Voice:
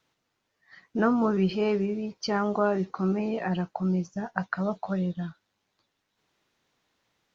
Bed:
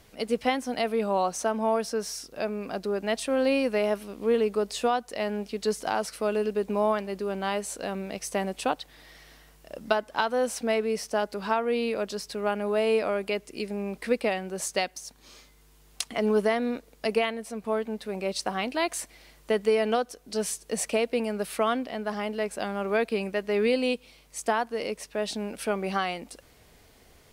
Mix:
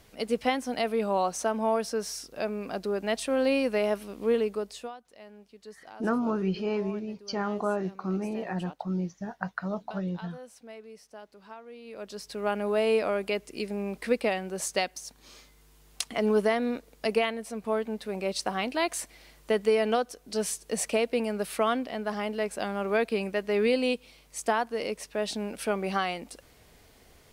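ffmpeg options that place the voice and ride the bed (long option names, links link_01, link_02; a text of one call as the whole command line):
ffmpeg -i stem1.wav -i stem2.wav -filter_complex "[0:a]adelay=5050,volume=-4dB[link_01];[1:a]volume=18dB,afade=type=out:start_time=4.3:duration=0.65:silence=0.11885,afade=type=in:start_time=11.84:duration=0.71:silence=0.112202[link_02];[link_01][link_02]amix=inputs=2:normalize=0" out.wav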